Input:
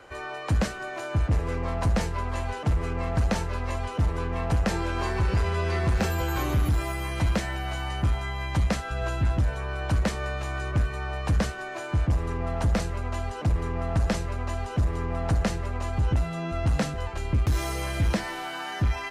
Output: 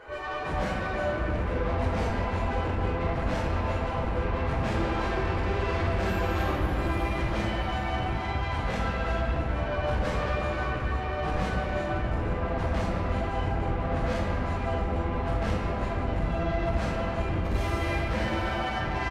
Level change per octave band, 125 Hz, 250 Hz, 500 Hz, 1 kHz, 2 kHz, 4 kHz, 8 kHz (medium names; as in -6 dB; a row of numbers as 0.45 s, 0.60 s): -3.5 dB, -0.5 dB, +2.5 dB, +2.5 dB, +1.0 dB, -2.0 dB, -10.0 dB